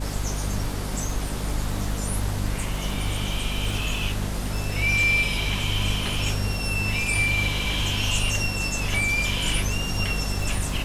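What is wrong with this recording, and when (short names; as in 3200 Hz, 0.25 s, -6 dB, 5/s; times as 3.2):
crackle 44/s -30 dBFS
hum 50 Hz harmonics 5 -29 dBFS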